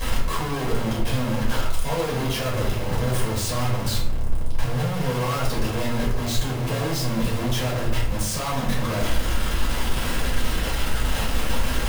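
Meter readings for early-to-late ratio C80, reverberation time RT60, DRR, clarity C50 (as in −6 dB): 7.0 dB, 0.80 s, −6.5 dB, 4.5 dB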